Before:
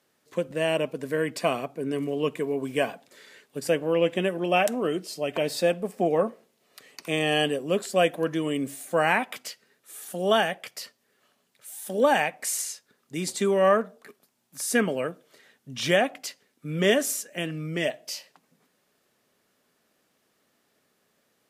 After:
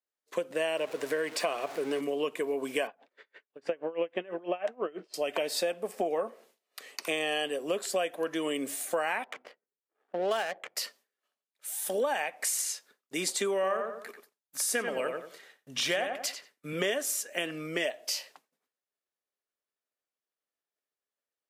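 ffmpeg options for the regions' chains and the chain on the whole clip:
-filter_complex "[0:a]asettb=1/sr,asplit=3[s0][s1][s2];[s0]atrim=end=0.774[s3];[s1]atrim=start=0.77:end=2.01,asetpts=PTS-STARTPTS,afade=t=in:d=0.004:c=qsin,afade=t=out:st=1.236:d=0.004:c=qsin,aeval=exprs='val(0)+0.5*0.0126*sgn(val(0))':c=same,highshelf=f=12000:g=-10,bandreject=f=250:w=5.2[s4];[s2]atrim=start=2.006[s5];[s3][s4]acrossfade=d=0.004:c1=hsin:c2=qsin[s6];[s6][s5]acrossfade=d=0.004:c1=qsin:c2=hsin,asettb=1/sr,asplit=3[s7][s8][s9];[s7]atrim=end=2.874[s10];[s8]atrim=start=2.87:end=5.14,asetpts=PTS-STARTPTS,afade=t=in:d=0.004:c=qsin,afade=t=out:st=2.266:d=0.004:c=qsin,lowpass=2300,aeval=exprs='val(0)*pow(10,-25*(0.5-0.5*cos(2*PI*6.1*n/s))/20)':c=same[s11];[s9]atrim=start=5.136[s12];[s10][s11]acrossfade=d=0.004:c1=hsin:c2=qsin[s13];[s13][s12]acrossfade=d=0.004:c1=qsin:c2=hsin,asettb=1/sr,asplit=3[s14][s15][s16];[s14]atrim=end=9.244[s17];[s15]atrim=start=9.24:end=10.76,asetpts=PTS-STARTPTS,afade=t=in:d=0.004:c=qsin,afade=t=out:st=1.516:d=0.004:c=qsin,bass=f=250:g=-1,treble=f=4000:g=-8,adynamicsmooth=sensitivity=5.5:basefreq=660[s18];[s16]atrim=start=10.756[s19];[s17][s18]acrossfade=d=0.004:c1=hsin:c2=qsin[s20];[s20][s19]acrossfade=d=0.004:c1=qsin:c2=hsin,asettb=1/sr,asplit=3[s21][s22][s23];[s21]atrim=end=13.544[s24];[s22]atrim=start=13.54:end=16.73,asetpts=PTS-STARTPTS,afade=t=in:d=0.004:c=qsin,afade=t=out:st=3.186:d=0.004:c=qsin,asubboost=boost=4.5:cutoff=130,asplit=2[s25][s26];[s26]adelay=90,lowpass=f=2600:p=1,volume=0.501,asplit=2[s27][s28];[s28]adelay=90,lowpass=f=2600:p=1,volume=0.27,asplit=2[s29][s30];[s30]adelay=90,lowpass=f=2600:p=1,volume=0.27[s31];[s25][s27][s29][s31]amix=inputs=4:normalize=0,atrim=end_sample=140679[s32];[s23]atrim=start=16.726[s33];[s24][s32]acrossfade=d=0.004:c1=hsin:c2=qsin[s34];[s34][s33]acrossfade=d=0.004:c1=qsin:c2=hsin,agate=range=0.0224:threshold=0.00251:ratio=3:detection=peak,highpass=410,acompressor=threshold=0.0251:ratio=6,volume=1.68"

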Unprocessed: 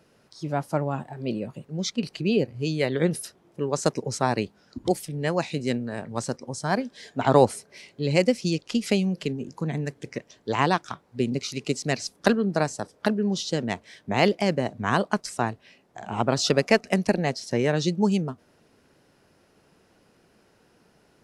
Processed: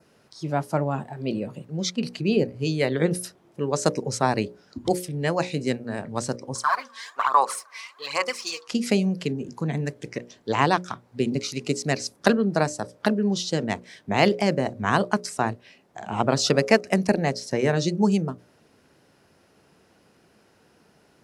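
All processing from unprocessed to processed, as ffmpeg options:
-filter_complex "[0:a]asettb=1/sr,asplit=3[s0][s1][s2];[s0]atrim=end=6.554[s3];[s1]atrim=start=6.55:end=8.68,asetpts=PTS-STARTPTS,afade=t=in:d=0.004:c=qsin,afade=t=out:st=2.126:d=0.004:c=qsin,highpass=f=1100:t=q:w=11,acompressor=threshold=0.0794:ratio=4:attack=3.2:release=140:knee=1:detection=peak,aphaser=in_gain=1:out_gain=1:delay=4.5:decay=0.62:speed=1.2:type=sinusoidal[s4];[s2]atrim=start=8.676[s5];[s3][s4]acrossfade=d=0.004:c1=hsin:c2=qsin[s6];[s6][s5]acrossfade=d=0.004:c1=qsin:c2=hsin,highpass=51,bandreject=f=60:t=h:w=6,bandreject=f=120:t=h:w=6,bandreject=f=180:t=h:w=6,bandreject=f=240:t=h:w=6,bandreject=f=300:t=h:w=6,bandreject=f=360:t=h:w=6,bandreject=f=420:t=h:w=6,bandreject=f=480:t=h:w=6,bandreject=f=540:t=h:w=6,bandreject=f=600:t=h:w=6,adynamicequalizer=threshold=0.00398:dfrequency=3200:dqfactor=2.1:tfrequency=3200:tqfactor=2.1:attack=5:release=100:ratio=0.375:range=2.5:mode=cutabove:tftype=bell,volume=1.26"

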